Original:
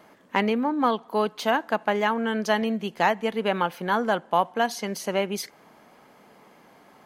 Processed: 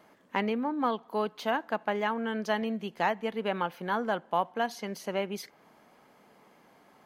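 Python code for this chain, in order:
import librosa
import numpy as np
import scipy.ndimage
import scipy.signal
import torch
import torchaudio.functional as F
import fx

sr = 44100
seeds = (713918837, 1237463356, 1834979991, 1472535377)

y = fx.dynamic_eq(x, sr, hz=8500.0, q=0.74, threshold_db=-50.0, ratio=4.0, max_db=-6)
y = y * 10.0 ** (-6.0 / 20.0)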